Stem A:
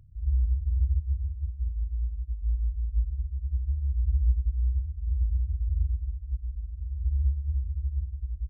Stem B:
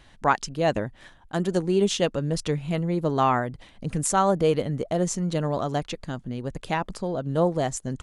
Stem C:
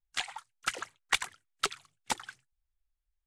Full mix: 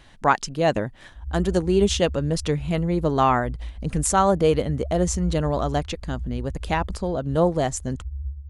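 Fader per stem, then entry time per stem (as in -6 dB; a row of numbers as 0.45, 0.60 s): -6.0 dB, +2.5 dB, off; 1.00 s, 0.00 s, off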